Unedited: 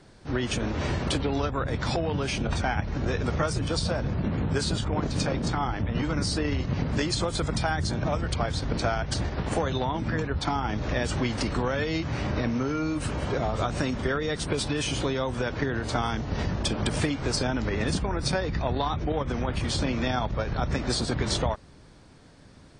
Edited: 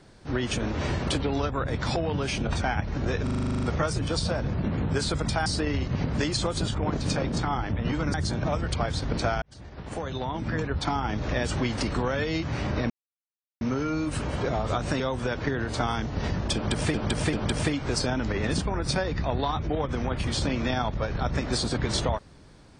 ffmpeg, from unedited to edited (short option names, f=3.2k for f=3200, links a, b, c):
-filter_complex "[0:a]asplit=20[a][b][c][d][e][f][g][h][i][j][k][l][m][n][o][p][q][r][s][t];[a]atrim=end=3.272[u];[b]atrim=start=3.228:end=3.272[v];[c]atrim=start=3.228:end=3.272[w];[d]atrim=start=3.228:end=3.272[x];[e]atrim=start=3.228:end=3.272[y];[f]atrim=start=3.228:end=3.272[z];[g]atrim=start=3.228:end=3.272[aa];[h]atrim=start=3.228:end=3.272[ab];[i]atrim=start=3.228:end=3.272[ac];[j]atrim=start=3.228:end=3.272[ad];[k]atrim=start=3.228:end=4.682[ae];[l]atrim=start=7.358:end=7.742[af];[m]atrim=start=6.238:end=7.362[ag];[n]atrim=start=4.678:end=6.242[ah];[o]atrim=start=7.738:end=9.02,asetpts=PTS-STARTPTS,afade=t=out:st=1.278:d=0.004:c=hsin[ai];[p]atrim=start=9.02:end=12.5,asetpts=PTS-STARTPTS,afade=t=in:d=1.23,afade=t=out:st=3.476:d=0.004:c=hsin,apad=pad_dur=0.71[aj];[q]atrim=start=12.5:end=13.892,asetpts=PTS-STARTPTS,afade=t=in:d=0.004:c=hsin[ak];[r]atrim=start=15.148:end=17.092[al];[s]atrim=start=16.698:end=17.092[am];[t]atrim=start=16.698[an];[u][v]acrossfade=d=0.004:c1=hsin:c2=hsin[ao];[ao][w]acrossfade=d=0.004:c1=hsin:c2=hsin[ap];[ap][x]acrossfade=d=0.004:c1=hsin:c2=hsin[aq];[aq][y]acrossfade=d=0.004:c1=hsin:c2=hsin[ar];[ar][z]acrossfade=d=0.004:c1=hsin:c2=hsin[as];[as][aa]acrossfade=d=0.004:c1=hsin:c2=hsin[at];[at][ab]acrossfade=d=0.004:c1=hsin:c2=hsin[au];[au][ac]acrossfade=d=0.004:c1=hsin:c2=hsin[av];[av][ad]acrossfade=d=0.004:c1=hsin:c2=hsin[aw];[aw][ae]acrossfade=d=0.004:c1=hsin:c2=hsin[ax];[ax][af]acrossfade=d=0.004:c1=hsin:c2=hsin[ay];[ay][ag]acrossfade=d=0.004:c1=hsin:c2=hsin[az];[az][ah]acrossfade=d=0.004:c1=hsin:c2=hsin[ba];[ai][aj][ak]concat=n=3:v=0:a=1[bb];[ba][bb]acrossfade=d=0.004:c1=hsin:c2=hsin[bc];[bc][al]acrossfade=d=0.004:c1=hsin:c2=hsin[bd];[bd][am]acrossfade=d=0.004:c1=hsin:c2=hsin[be];[be][an]acrossfade=d=0.004:c1=hsin:c2=hsin"